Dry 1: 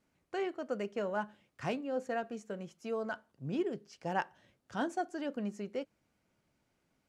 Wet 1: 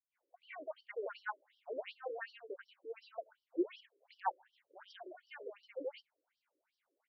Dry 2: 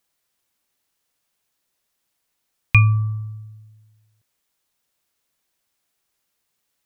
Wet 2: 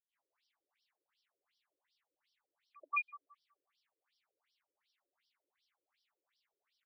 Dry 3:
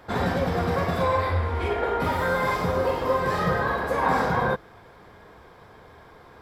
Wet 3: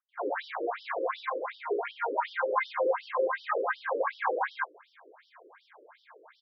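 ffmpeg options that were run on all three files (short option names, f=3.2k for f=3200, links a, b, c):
-filter_complex "[0:a]equalizer=f=2.1k:t=o:w=0.37:g=4,acrossover=split=140|620|3600[a][b][c][d];[d]acompressor=threshold=-57dB:ratio=6[e];[a][b][c][e]amix=inputs=4:normalize=0,acrossover=split=490|2500[f][g][h];[g]adelay=90[i];[h]adelay=180[j];[f][i][j]amix=inputs=3:normalize=0,afftfilt=real='re*between(b*sr/1024,400*pow(4200/400,0.5+0.5*sin(2*PI*2.7*pts/sr))/1.41,400*pow(4200/400,0.5+0.5*sin(2*PI*2.7*pts/sr))*1.41)':imag='im*between(b*sr/1024,400*pow(4200/400,0.5+0.5*sin(2*PI*2.7*pts/sr))/1.41,400*pow(4200/400,0.5+0.5*sin(2*PI*2.7*pts/sr))*1.41)':win_size=1024:overlap=0.75,volume=2dB"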